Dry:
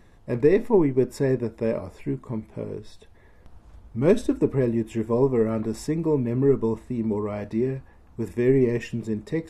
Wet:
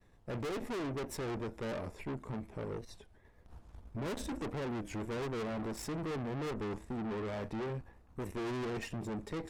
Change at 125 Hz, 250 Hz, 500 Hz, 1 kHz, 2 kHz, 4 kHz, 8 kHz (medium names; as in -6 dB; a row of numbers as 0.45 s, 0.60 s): -13.5 dB, -15.0 dB, -17.0 dB, -6.0 dB, -6.5 dB, -1.5 dB, -4.5 dB